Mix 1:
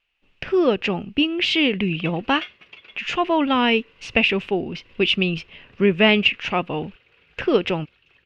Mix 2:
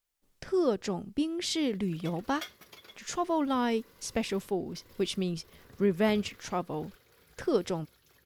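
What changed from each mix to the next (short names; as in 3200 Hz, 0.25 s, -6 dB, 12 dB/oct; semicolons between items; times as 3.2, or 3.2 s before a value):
speech -8.5 dB; master: remove synth low-pass 2700 Hz, resonance Q 8.3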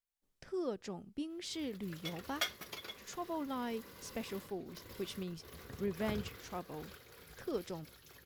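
speech -11.0 dB; background +5.5 dB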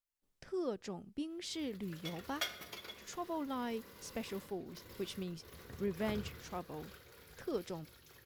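background -3.5 dB; reverb: on, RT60 1.0 s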